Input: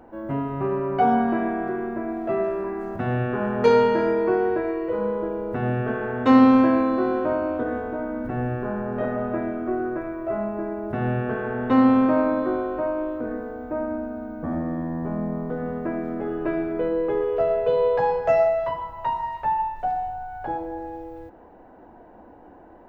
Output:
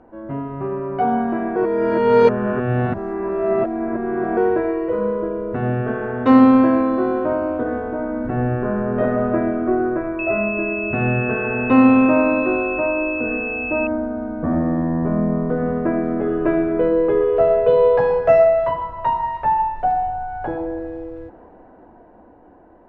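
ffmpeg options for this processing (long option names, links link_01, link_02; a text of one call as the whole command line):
ffmpeg -i in.wav -filter_complex "[0:a]asettb=1/sr,asplit=3[link_01][link_02][link_03];[link_01]atrim=end=10.194[link_04];[link_02]atrim=start=10.19:end=13.87,asetpts=PTS-STARTPTS,afade=type=in:duration=0.004:curve=qsin,afade=type=out:start_time=3.676:duration=0.004:curve=qsin,aeval=exprs='val(0)+0.0501*sin(2*PI*2600*n/s)':channel_layout=same[link_05];[link_03]atrim=start=13.866[link_06];[link_04][link_05]acrossfade=duration=0.004:curve1=hsin:curve2=qsin[link_07];[link_07][link_06]acrossfade=duration=0.004:curve1=qsin:curve2=hsin,asplit=3[link_08][link_09][link_10];[link_08]atrim=end=1.562[link_11];[link_09]atrim=start=1.558:end=4.372,asetpts=PTS-STARTPTS,areverse[link_12];[link_10]atrim=start=4.368[link_13];[link_11][link_12]acrossfade=duration=0.004:curve1=hsin:curve2=hsin[link_14];[link_14][link_13]acrossfade=duration=0.004:curve1=hsin:curve2=hsin,bandreject=frequency=830:width=18,dynaudnorm=framelen=210:gausssize=17:maxgain=9dB,aemphasis=mode=reproduction:type=75fm,volume=-1dB" out.wav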